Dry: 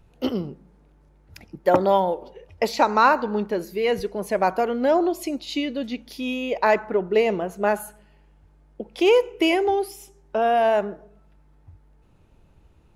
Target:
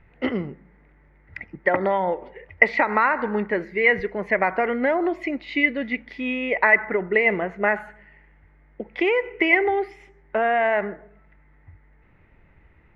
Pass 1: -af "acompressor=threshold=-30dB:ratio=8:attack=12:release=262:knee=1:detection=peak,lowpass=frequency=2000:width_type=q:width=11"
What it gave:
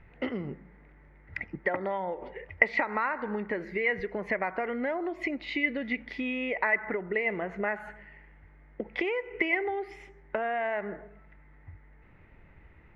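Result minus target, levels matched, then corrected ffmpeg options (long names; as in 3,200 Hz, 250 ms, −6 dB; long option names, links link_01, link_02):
downward compressor: peak gain reduction +10 dB
-af "acompressor=threshold=-18.5dB:ratio=8:attack=12:release=262:knee=1:detection=peak,lowpass=frequency=2000:width_type=q:width=11"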